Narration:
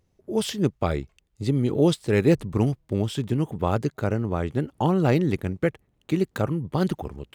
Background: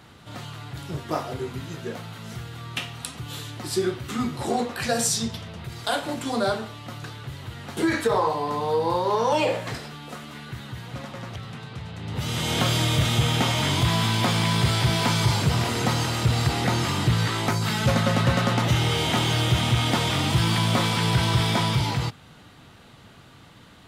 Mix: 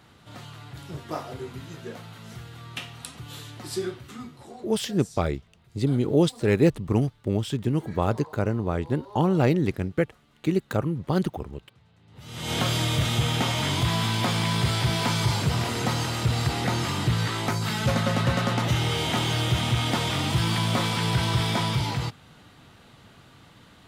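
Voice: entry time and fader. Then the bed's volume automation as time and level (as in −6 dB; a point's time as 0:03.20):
4.35 s, −0.5 dB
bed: 0:03.82 −5 dB
0:04.73 −23 dB
0:12.08 −23 dB
0:12.52 −2.5 dB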